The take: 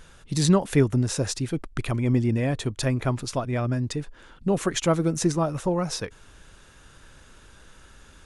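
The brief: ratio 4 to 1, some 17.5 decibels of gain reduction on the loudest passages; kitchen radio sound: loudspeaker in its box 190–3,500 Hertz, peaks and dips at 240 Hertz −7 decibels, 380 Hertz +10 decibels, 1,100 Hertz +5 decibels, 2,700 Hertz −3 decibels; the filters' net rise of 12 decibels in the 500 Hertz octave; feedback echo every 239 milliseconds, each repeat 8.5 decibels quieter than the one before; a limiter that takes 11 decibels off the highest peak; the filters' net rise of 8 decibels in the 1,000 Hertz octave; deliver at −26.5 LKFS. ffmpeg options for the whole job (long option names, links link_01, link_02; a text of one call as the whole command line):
ffmpeg -i in.wav -af "equalizer=frequency=500:width_type=o:gain=8.5,equalizer=frequency=1000:width_type=o:gain=4.5,acompressor=threshold=-32dB:ratio=4,alimiter=level_in=3dB:limit=-24dB:level=0:latency=1,volume=-3dB,highpass=190,equalizer=frequency=240:width_type=q:width=4:gain=-7,equalizer=frequency=380:width_type=q:width=4:gain=10,equalizer=frequency=1100:width_type=q:width=4:gain=5,equalizer=frequency=2700:width_type=q:width=4:gain=-3,lowpass=frequency=3500:width=0.5412,lowpass=frequency=3500:width=1.3066,aecho=1:1:239|478|717|956:0.376|0.143|0.0543|0.0206,volume=8.5dB" out.wav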